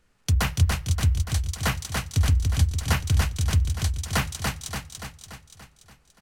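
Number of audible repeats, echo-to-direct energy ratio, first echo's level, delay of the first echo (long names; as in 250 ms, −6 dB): 7, −2.5 dB, −4.0 dB, 288 ms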